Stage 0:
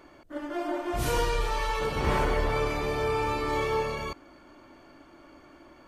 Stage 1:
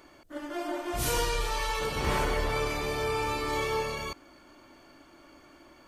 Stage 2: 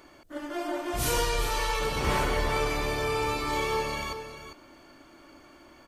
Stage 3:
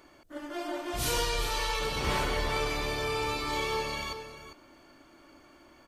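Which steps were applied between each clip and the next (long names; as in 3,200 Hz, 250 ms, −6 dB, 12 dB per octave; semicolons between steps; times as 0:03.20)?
high-shelf EQ 3,100 Hz +9.5 dB; level −3 dB
single-tap delay 400 ms −10.5 dB; level +1.5 dB
dynamic equaliser 3,900 Hz, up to +5 dB, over −48 dBFS, Q 1.1; level −3.5 dB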